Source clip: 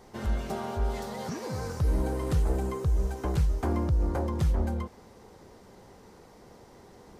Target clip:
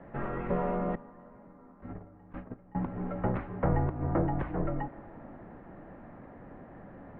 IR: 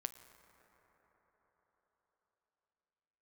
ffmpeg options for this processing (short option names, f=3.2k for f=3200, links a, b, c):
-filter_complex "[0:a]lowshelf=f=67:g=-5,asettb=1/sr,asplit=3[a][b][c];[a]atrim=end=0.954[d];[b]atrim=start=0.95:end=2.75,asetpts=PTS-STARTPTS,afade=t=in:d=0.004:c=qsin,afade=t=out:st=1.796:d=0.004:c=qsin,agate=range=-27dB:threshold=-24dB:ratio=16:detection=peak[e];[c]atrim=start=2.746[f];[d][e]acrossfade=d=0.004:c1=hsin:c2=qsin[g];[g][f]acrossfade=d=0.004:c1=qsin:c2=hsin,asplit=2[h][i];[1:a]atrim=start_sample=2205[j];[i][j]afir=irnorm=-1:irlink=0,volume=1.5dB[k];[h][k]amix=inputs=2:normalize=0,highpass=f=230:t=q:w=0.5412,highpass=f=230:t=q:w=1.307,lowpass=f=2.3k:t=q:w=0.5176,lowpass=f=2.3k:t=q:w=0.7071,lowpass=f=2.3k:t=q:w=1.932,afreqshift=-210"